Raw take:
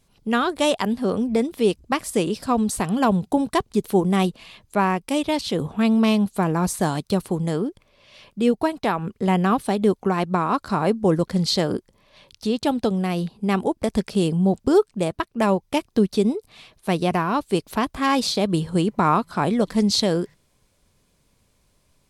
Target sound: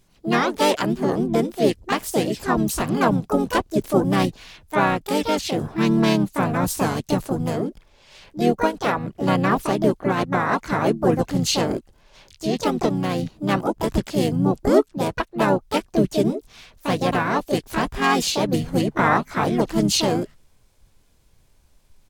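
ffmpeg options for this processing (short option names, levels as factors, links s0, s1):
-filter_complex "[0:a]asubboost=boost=2.5:cutoff=82,asplit=4[s0][s1][s2][s3];[s1]asetrate=29433,aresample=44100,atempo=1.49831,volume=0.501[s4];[s2]asetrate=37084,aresample=44100,atempo=1.18921,volume=0.355[s5];[s3]asetrate=66075,aresample=44100,atempo=0.66742,volume=0.708[s6];[s0][s4][s5][s6]amix=inputs=4:normalize=0,volume=0.841"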